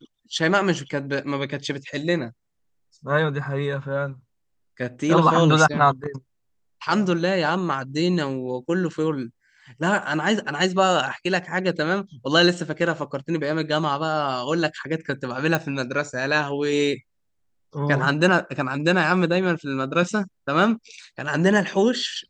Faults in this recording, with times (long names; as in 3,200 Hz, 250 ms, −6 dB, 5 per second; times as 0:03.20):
0:15.55: click −8 dBFS